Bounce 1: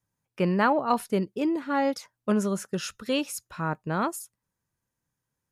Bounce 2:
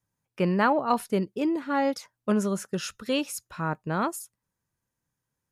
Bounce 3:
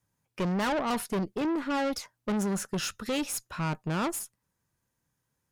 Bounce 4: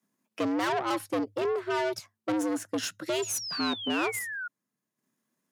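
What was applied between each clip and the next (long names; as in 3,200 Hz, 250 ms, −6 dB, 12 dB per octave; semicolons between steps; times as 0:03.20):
no processing that can be heard
tube saturation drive 31 dB, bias 0.4; level +5 dB
sound drawn into the spectrogram fall, 0:03.22–0:04.48, 1,300–7,100 Hz −35 dBFS; frequency shifter +100 Hz; transient designer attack +1 dB, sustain −7 dB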